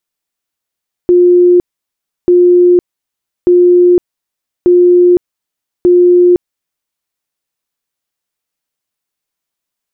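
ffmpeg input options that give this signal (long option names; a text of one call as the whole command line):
ffmpeg -f lavfi -i "aevalsrc='0.708*sin(2*PI*355*mod(t,1.19))*lt(mod(t,1.19),181/355)':duration=5.95:sample_rate=44100" out.wav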